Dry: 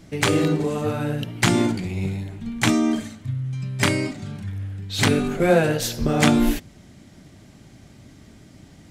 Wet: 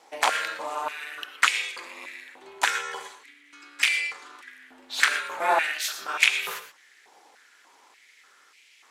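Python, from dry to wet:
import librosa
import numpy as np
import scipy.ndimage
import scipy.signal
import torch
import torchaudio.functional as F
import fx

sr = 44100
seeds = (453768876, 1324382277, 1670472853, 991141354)

y = x * np.sin(2.0 * np.pi * 160.0 * np.arange(len(x)) / sr)
y = fx.rev_gated(y, sr, seeds[0], gate_ms=140, shape='rising', drr_db=10.0)
y = fx.filter_held_highpass(y, sr, hz=3.4, low_hz=840.0, high_hz=2400.0)
y = y * librosa.db_to_amplitude(-1.0)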